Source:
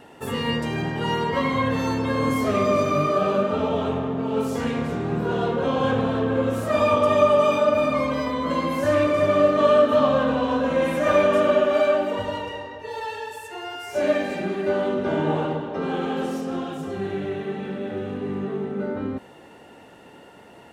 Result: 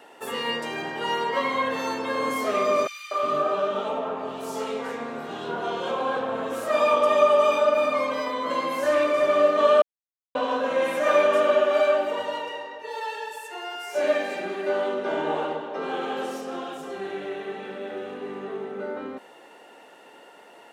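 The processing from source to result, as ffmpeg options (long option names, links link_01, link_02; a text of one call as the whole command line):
ffmpeg -i in.wav -filter_complex "[0:a]asettb=1/sr,asplit=3[link_01][link_02][link_03];[link_01]atrim=end=2.874[link_04];[link_02]atrim=start=2.87:end=6.52,asetpts=PTS-STARTPTS,afade=type=in:duration=0.004:curve=qsin,afade=type=out:start_time=3.646:duration=0.004:curve=qsin,acrossover=split=450|2200[link_05][link_06][link_07];[link_06]adelay=240[link_08];[link_05]adelay=360[link_09];[link_09][link_08][link_07]amix=inputs=3:normalize=0,atrim=end_sample=160965[link_10];[link_03]atrim=start=6.516[link_11];[link_04][link_10]acrossfade=duration=0.004:curve1=hsin:curve2=qsin[link_12];[link_12][link_11]acrossfade=duration=0.004:curve1=qsin:curve2=hsin,asplit=3[link_13][link_14][link_15];[link_13]atrim=end=9.82,asetpts=PTS-STARTPTS,afade=type=out:start_time=9.816:duration=0.004:curve=hsin[link_16];[link_14]atrim=start=9.82:end=10.35,asetpts=PTS-STARTPTS,volume=0[link_17];[link_15]atrim=start=10.35,asetpts=PTS-STARTPTS,afade=type=in:duration=0.004:curve=hsin[link_18];[link_16][link_17][link_18]concat=n=3:v=0:a=1,highpass=430" out.wav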